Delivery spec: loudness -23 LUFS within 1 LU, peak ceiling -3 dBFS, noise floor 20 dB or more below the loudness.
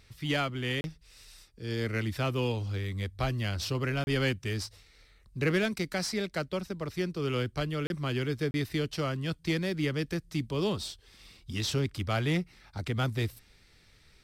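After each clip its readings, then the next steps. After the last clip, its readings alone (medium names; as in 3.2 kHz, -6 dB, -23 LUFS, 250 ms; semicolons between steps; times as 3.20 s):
dropouts 4; longest dropout 31 ms; loudness -32.0 LUFS; peak level -18.0 dBFS; loudness target -23.0 LUFS
-> interpolate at 0.81/4.04/7.87/8.51 s, 31 ms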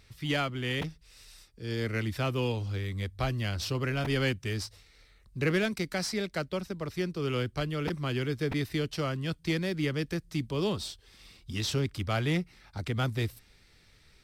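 dropouts 0; loudness -32.0 LUFS; peak level -18.0 dBFS; loudness target -23.0 LUFS
-> trim +9 dB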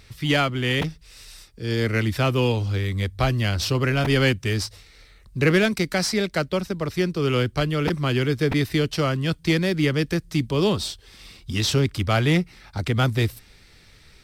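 loudness -23.0 LUFS; peak level -9.0 dBFS; noise floor -52 dBFS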